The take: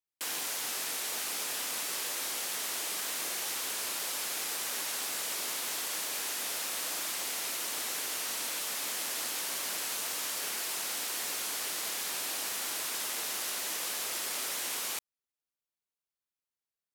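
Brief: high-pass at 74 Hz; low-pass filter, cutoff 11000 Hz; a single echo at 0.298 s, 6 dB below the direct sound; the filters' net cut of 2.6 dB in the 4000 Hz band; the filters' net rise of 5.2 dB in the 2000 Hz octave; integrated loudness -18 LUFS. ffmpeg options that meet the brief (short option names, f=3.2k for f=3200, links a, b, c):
-af "highpass=74,lowpass=11k,equalizer=f=2k:t=o:g=8,equalizer=f=4k:t=o:g=-6,aecho=1:1:298:0.501,volume=14.5dB"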